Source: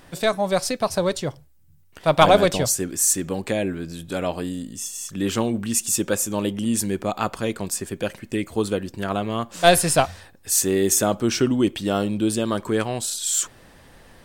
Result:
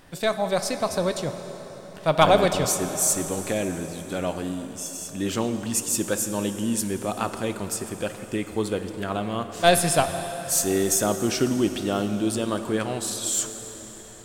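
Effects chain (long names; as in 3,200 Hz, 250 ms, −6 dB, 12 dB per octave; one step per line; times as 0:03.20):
dense smooth reverb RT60 4.8 s, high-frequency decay 0.8×, DRR 8 dB
level −3 dB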